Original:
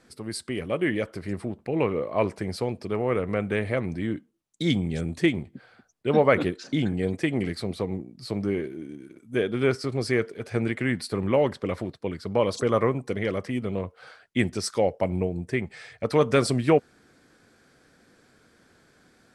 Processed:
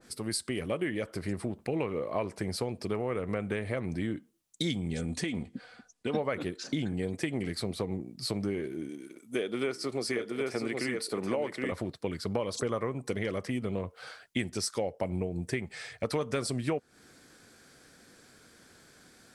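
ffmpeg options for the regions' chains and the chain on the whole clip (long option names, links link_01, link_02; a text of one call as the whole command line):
ffmpeg -i in.wav -filter_complex "[0:a]asettb=1/sr,asplit=3[link_01][link_02][link_03];[link_01]atrim=end=4.934[link_04];[link_02]atrim=start=4.93:end=6.15,asetpts=PTS-STARTPTS,afade=type=in:duration=0.004:curve=qsin,afade=type=out:start_time=1.216:duration=0.004:curve=qsin,lowpass=frequency=10000:width=0.5412,lowpass=frequency=10000:width=1.3066,aecho=1:1:4.1:0.46,atrim=end_sample=53802,acompressor=threshold=-26dB:ratio=6:attack=3.2:release=140:knee=1:detection=peak[link_05];[link_03]atrim=start=6.146[link_06];[link_04][link_05]acrossfade=duration=0.004:curve1=hsin:curve2=qsin[link_07];[link_07][link_06]acrossfade=duration=0.004:curve1=qsin:curve2=hsin,asettb=1/sr,asplit=3[link_08][link_09][link_10];[link_08]atrim=end=8.894[link_11];[link_09]atrim=start=8.89:end=11.72,asetpts=PTS-STARTPTS,afade=type=in:duration=0.004:curve=qsin,afade=type=out:start_time=2.826:duration=0.004:curve=qsin,highpass=240,bandreject=frequency=1600:width=16,aecho=1:1:770:0.631,atrim=end_sample=124803[link_12];[link_10]atrim=start=11.716[link_13];[link_11][link_12]acrossfade=duration=0.004:curve1=hsin:curve2=qsin[link_14];[link_14][link_13]acrossfade=duration=0.004:curve1=qsin:curve2=hsin,highshelf=frequency=3800:gain=10,acompressor=threshold=-28dB:ratio=6,adynamicequalizer=threshold=0.00447:dfrequency=1900:dqfactor=0.7:tfrequency=1900:tqfactor=0.7:attack=5:release=100:ratio=0.375:range=2:mode=cutabove:tftype=highshelf" out.wav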